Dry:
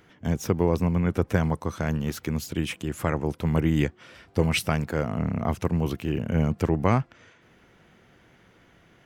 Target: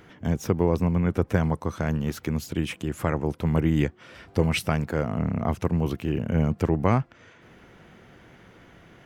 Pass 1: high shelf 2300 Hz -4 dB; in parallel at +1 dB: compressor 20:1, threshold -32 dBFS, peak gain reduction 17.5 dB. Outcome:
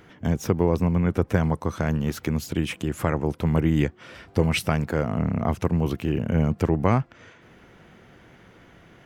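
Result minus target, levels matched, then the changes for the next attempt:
compressor: peak gain reduction -11 dB
change: compressor 20:1, threshold -43.5 dBFS, peak gain reduction 28.5 dB

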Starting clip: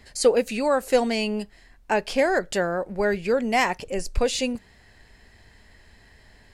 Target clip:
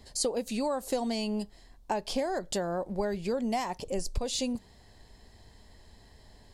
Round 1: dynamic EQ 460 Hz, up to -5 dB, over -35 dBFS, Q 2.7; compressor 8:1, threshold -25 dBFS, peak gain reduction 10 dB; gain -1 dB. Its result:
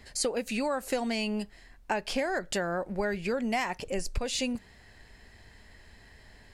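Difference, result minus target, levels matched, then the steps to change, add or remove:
2000 Hz band +8.5 dB
add after compressor: band shelf 1900 Hz -9.5 dB 1.3 oct

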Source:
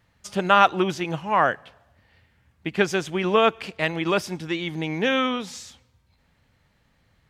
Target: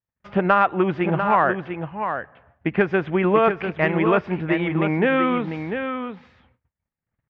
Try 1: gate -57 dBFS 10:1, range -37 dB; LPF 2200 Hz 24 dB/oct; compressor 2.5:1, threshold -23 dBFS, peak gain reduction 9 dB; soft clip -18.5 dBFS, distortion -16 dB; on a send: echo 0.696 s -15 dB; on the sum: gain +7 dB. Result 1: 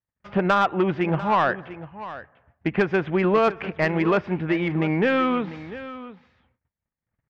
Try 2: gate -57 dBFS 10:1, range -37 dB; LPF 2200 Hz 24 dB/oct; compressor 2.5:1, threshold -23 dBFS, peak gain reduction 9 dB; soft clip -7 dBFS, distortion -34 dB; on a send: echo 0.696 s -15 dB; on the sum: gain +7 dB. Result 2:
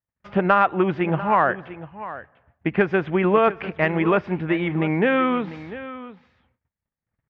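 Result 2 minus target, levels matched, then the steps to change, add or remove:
echo-to-direct -7.5 dB
change: echo 0.696 s -7.5 dB

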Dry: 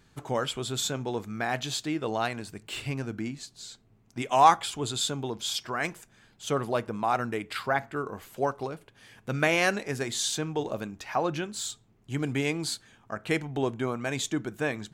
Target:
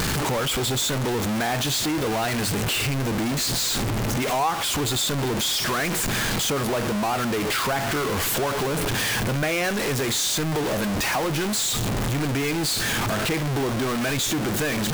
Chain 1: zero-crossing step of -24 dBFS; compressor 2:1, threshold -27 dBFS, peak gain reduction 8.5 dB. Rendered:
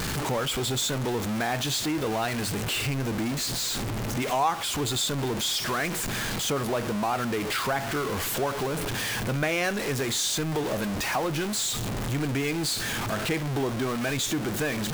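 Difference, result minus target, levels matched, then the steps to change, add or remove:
zero-crossing step: distortion -4 dB
change: zero-crossing step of -15.5 dBFS

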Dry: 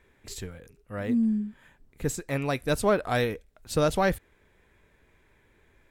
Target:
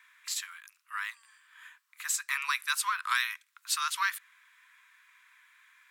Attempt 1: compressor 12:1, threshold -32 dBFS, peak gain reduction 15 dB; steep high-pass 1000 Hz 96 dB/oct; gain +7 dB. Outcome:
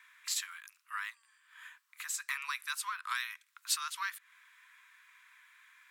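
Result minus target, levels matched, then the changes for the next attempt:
compressor: peak gain reduction +8 dB
change: compressor 12:1, threshold -23.5 dBFS, peak gain reduction 7.5 dB

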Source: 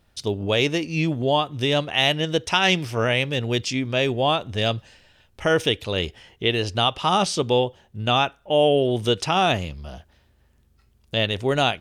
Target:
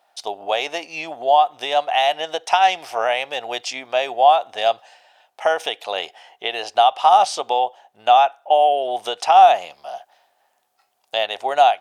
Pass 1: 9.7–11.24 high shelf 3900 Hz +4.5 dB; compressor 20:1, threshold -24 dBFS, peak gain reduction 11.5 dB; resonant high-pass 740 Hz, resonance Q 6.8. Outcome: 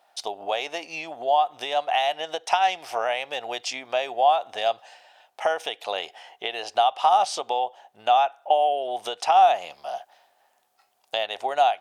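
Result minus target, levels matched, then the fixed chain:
compressor: peak gain reduction +6 dB
9.7–11.24 high shelf 3900 Hz +4.5 dB; compressor 20:1, threshold -17.5 dBFS, peak gain reduction 5.5 dB; resonant high-pass 740 Hz, resonance Q 6.8

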